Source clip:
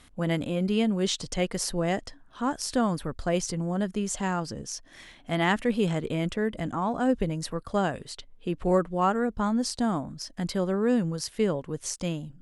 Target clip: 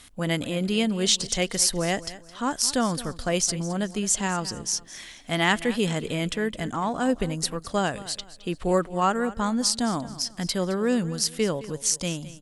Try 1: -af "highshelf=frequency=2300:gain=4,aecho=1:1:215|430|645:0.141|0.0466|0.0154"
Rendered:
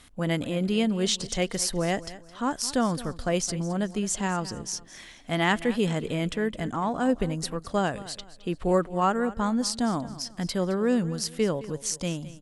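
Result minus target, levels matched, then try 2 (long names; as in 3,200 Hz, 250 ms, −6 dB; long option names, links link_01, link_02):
4,000 Hz band −3.0 dB
-af "highshelf=frequency=2300:gain=11,aecho=1:1:215|430|645:0.141|0.0466|0.0154"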